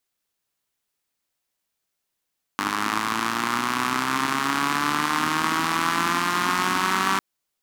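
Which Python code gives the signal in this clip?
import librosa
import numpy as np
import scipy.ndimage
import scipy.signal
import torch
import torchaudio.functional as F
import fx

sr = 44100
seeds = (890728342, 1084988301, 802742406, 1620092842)

y = fx.engine_four_rev(sr, seeds[0], length_s=4.6, rpm=3000, resonances_hz=(270.0, 1100.0), end_rpm=5800)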